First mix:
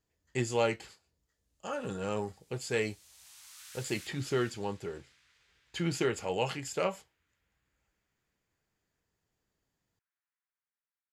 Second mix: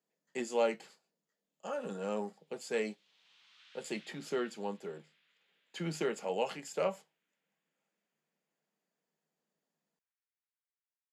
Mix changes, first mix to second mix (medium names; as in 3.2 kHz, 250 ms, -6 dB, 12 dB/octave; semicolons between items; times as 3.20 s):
speech: add rippled Chebyshev high-pass 150 Hz, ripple 6 dB; background: add four-pole ladder low-pass 3.9 kHz, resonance 45%